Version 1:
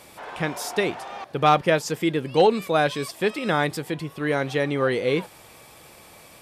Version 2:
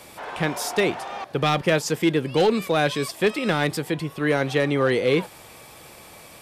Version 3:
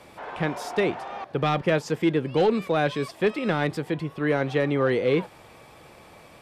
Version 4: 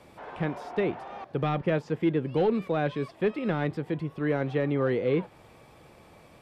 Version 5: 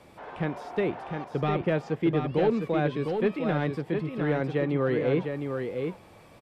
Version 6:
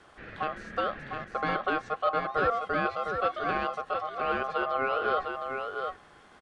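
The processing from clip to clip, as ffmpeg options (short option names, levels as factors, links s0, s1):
-filter_complex "[0:a]acrossover=split=350|1900[s0][s1][s2];[s1]alimiter=limit=0.126:level=0:latency=1:release=34[s3];[s0][s3][s2]amix=inputs=3:normalize=0,asoftclip=type=hard:threshold=0.168,volume=1.41"
-af "lowpass=f=2100:p=1,volume=0.841"
-filter_complex "[0:a]lowshelf=f=500:g=6,acrossover=split=3800[s0][s1];[s1]acompressor=threshold=0.00158:ratio=6[s2];[s0][s2]amix=inputs=2:normalize=0,volume=0.447"
-af "aecho=1:1:705:0.531"
-af "aeval=exprs='val(0)*sin(2*PI*930*n/s)':c=same,aresample=22050,aresample=44100"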